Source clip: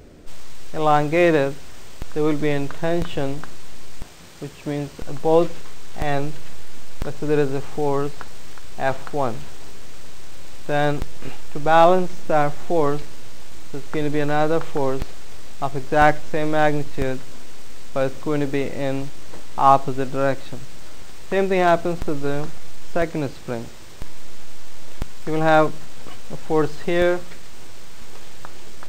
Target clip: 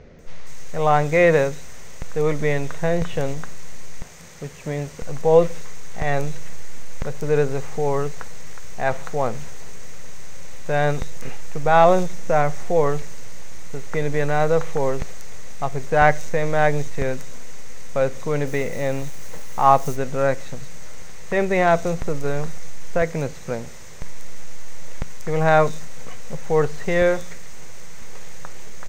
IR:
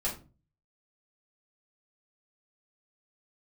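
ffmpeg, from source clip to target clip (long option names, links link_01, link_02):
-filter_complex "[0:a]asettb=1/sr,asplit=3[link_01][link_02][link_03];[link_01]atrim=end=18.284[link_04];[link_02]atrim=start=18.28:end=19.78,asetpts=PTS-STARTPTS,afade=type=in:duration=0.004:curve=qsin,afade=type=out:start_time=1.496:duration=0.004:curve=qsin,acrusher=bits=7:mode=log:mix=0:aa=0.000001[link_05];[link_03]atrim=start=19.776[link_06];[link_04][link_05]acrossfade=duration=0.004:curve1=hsin:curve2=qsin[link_07];[link_07][link_06]acrossfade=duration=0.004:curve1=qsin:curve2=hsin,equalizer=frequency=160:width_type=o:width=0.33:gain=5,equalizer=frequency=315:width_type=o:width=0.33:gain=-9,equalizer=frequency=500:width_type=o:width=0.33:gain=5,equalizer=frequency=2000:width_type=o:width=0.33:gain=6,equalizer=frequency=3150:width_type=o:width=0.33:gain=-3,equalizer=frequency=6300:width_type=o:width=0.33:gain=10,acrossover=split=4800[link_08][link_09];[link_09]adelay=190[link_10];[link_08][link_10]amix=inputs=2:normalize=0,volume=-1dB"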